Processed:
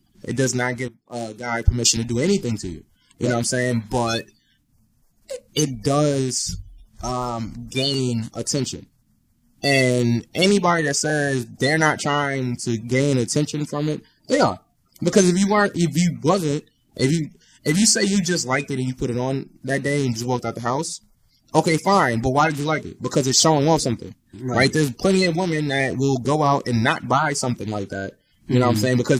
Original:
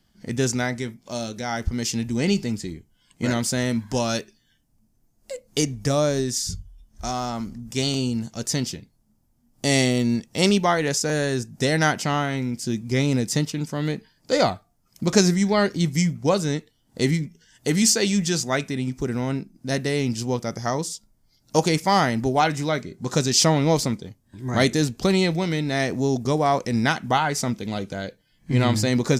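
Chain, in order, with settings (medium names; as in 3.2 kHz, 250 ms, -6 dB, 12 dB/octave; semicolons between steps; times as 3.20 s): coarse spectral quantiser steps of 30 dB; 0.88–1.97 s: three bands expanded up and down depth 100%; trim +3 dB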